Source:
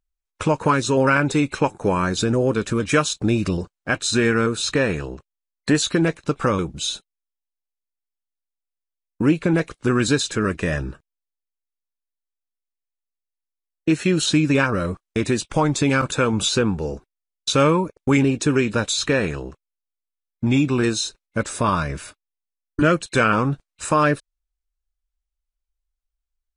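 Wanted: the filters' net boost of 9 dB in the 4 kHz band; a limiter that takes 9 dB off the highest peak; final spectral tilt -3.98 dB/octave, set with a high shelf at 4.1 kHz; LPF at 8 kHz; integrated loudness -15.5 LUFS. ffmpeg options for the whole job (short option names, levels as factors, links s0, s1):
-af "lowpass=8000,equalizer=f=4000:t=o:g=7,highshelf=f=4100:g=6,volume=1.78,alimiter=limit=0.596:level=0:latency=1"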